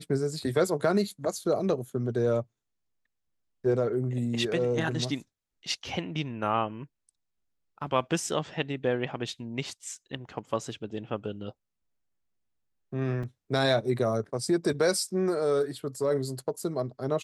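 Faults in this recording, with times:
13.23–13.24 s: dropout 5.1 ms

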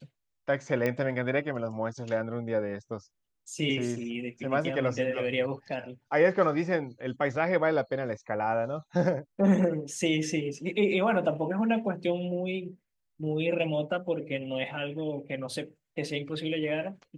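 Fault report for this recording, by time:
0.86 s: pop -17 dBFS

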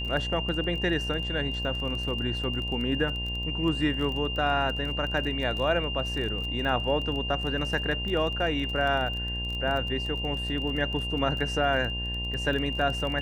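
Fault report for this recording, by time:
buzz 60 Hz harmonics 18 -34 dBFS
crackle 23 per s -32 dBFS
whine 2.8 kHz -32 dBFS

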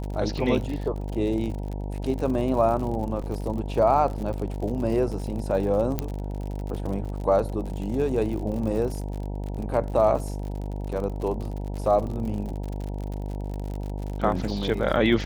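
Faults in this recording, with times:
buzz 50 Hz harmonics 19 -31 dBFS
crackle 69 per s -32 dBFS
3.22 s: dropout 4.4 ms
5.99 s: pop -12 dBFS

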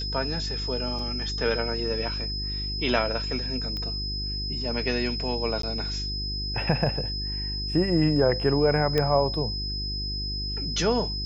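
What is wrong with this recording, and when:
hum 50 Hz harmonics 8 -33 dBFS
whine 5.1 kHz -31 dBFS
0.99 s: dropout 2.5 ms
3.77 s: pop -21 dBFS
5.62–5.63 s: dropout 13 ms
8.98 s: pop -11 dBFS

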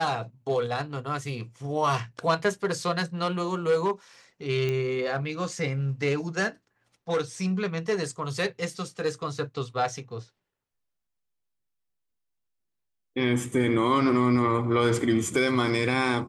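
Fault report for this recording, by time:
4.69 s: pop -17 dBFS

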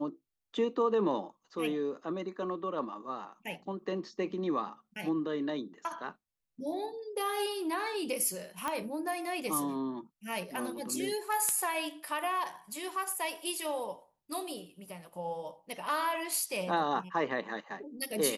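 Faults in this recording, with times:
8.68 s: pop -19 dBFS

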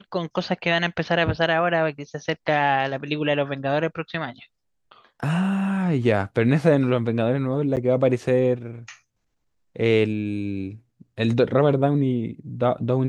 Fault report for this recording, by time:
7.76–7.77 s: dropout 8.5 ms

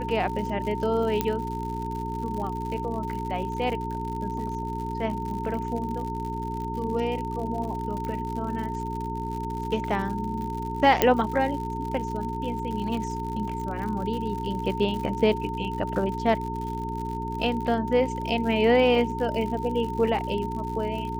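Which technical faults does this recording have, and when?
crackle 95 per s -33 dBFS
hum 60 Hz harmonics 7 -33 dBFS
whine 910 Hz -32 dBFS
1.21 s: pop -10 dBFS
8.05 s: pop -22 dBFS
11.02 s: pop -4 dBFS

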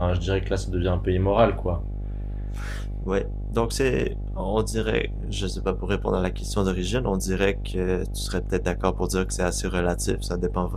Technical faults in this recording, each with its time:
buzz 50 Hz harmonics 16 -30 dBFS

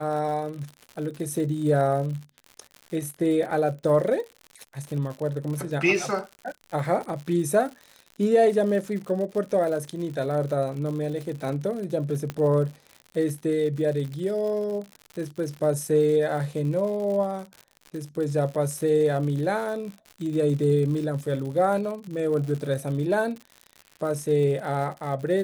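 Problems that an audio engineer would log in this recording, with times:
crackle 100 per s -33 dBFS
12.30 s: pop -16 dBFS

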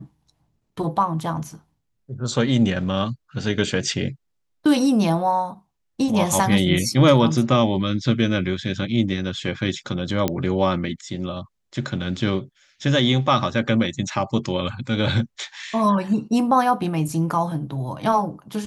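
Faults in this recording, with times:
10.28 s: pop -7 dBFS

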